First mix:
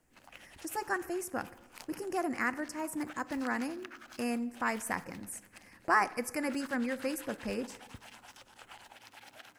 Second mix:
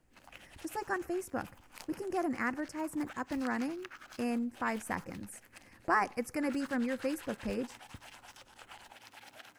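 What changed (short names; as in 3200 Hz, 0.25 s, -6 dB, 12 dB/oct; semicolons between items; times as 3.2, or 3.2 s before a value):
speech: add tilt -1.5 dB/oct; reverb: off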